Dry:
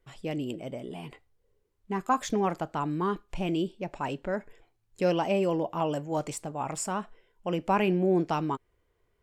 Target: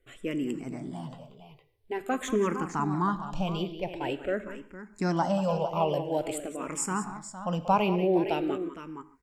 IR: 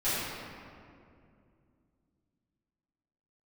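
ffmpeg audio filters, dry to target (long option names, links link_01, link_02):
-filter_complex "[0:a]aecho=1:1:185|461:0.224|0.251,asplit=2[link_01][link_02];[1:a]atrim=start_sample=2205,atrim=end_sample=4410,asetrate=28224,aresample=44100[link_03];[link_02][link_03]afir=irnorm=-1:irlink=0,volume=-24.5dB[link_04];[link_01][link_04]amix=inputs=2:normalize=0,asplit=2[link_05][link_06];[link_06]afreqshift=-0.47[link_07];[link_05][link_07]amix=inputs=2:normalize=1,volume=3dB"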